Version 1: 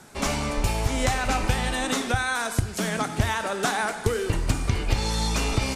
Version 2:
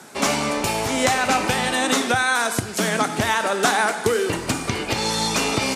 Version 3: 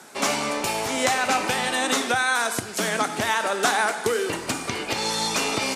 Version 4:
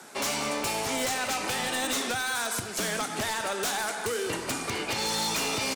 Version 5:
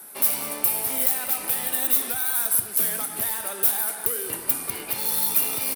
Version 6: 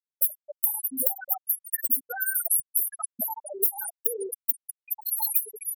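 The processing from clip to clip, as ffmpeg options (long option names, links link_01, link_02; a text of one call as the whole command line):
ffmpeg -i in.wav -af "highpass=200,volume=6.5dB" out.wav
ffmpeg -i in.wav -af "lowshelf=frequency=170:gain=-11,volume=-2dB" out.wav
ffmpeg -i in.wav -filter_complex "[0:a]acrossover=split=150|3000[link_01][link_02][link_03];[link_02]acompressor=threshold=-26dB:ratio=6[link_04];[link_01][link_04][link_03]amix=inputs=3:normalize=0,aeval=exprs='0.0841*(abs(mod(val(0)/0.0841+3,4)-2)-1)':channel_layout=same,asplit=2[link_05][link_06];[link_06]adelay=198.3,volume=-14dB,highshelf=frequency=4000:gain=-4.46[link_07];[link_05][link_07]amix=inputs=2:normalize=0,volume=-1.5dB" out.wav
ffmpeg -i in.wav -af "aexciter=amount=15.6:drive=6.6:freq=10000,volume=-5dB" out.wav
ffmpeg -i in.wav -af "acrusher=bits=4:mode=log:mix=0:aa=0.000001,afftfilt=real='re*gte(hypot(re,im),0.126)':imag='im*gte(hypot(re,im),0.126)':win_size=1024:overlap=0.75,acompressor=threshold=-28dB:ratio=4,volume=7dB" out.wav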